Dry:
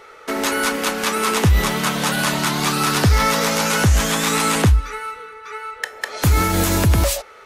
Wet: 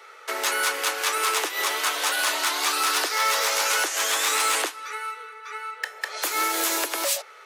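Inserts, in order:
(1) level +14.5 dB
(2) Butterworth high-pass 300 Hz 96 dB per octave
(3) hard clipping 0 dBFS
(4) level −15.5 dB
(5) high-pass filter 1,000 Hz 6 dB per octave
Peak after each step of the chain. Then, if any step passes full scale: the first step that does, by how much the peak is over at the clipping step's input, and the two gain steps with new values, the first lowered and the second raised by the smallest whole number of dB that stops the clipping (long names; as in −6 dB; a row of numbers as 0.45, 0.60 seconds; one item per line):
+8.0, +8.5, 0.0, −15.5, −12.0 dBFS
step 1, 8.5 dB
step 1 +5.5 dB, step 4 −6.5 dB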